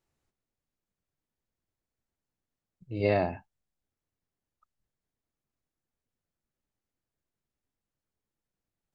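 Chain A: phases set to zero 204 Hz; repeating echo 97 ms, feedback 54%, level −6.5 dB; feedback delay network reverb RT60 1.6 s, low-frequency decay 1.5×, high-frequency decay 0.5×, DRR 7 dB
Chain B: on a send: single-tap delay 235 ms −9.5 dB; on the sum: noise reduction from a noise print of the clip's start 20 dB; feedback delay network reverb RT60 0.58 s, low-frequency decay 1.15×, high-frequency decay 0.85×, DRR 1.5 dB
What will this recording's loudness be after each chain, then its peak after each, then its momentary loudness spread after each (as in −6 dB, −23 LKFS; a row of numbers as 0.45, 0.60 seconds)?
−31.5, −27.0 LKFS; −14.0, −11.0 dBFS; 16, 15 LU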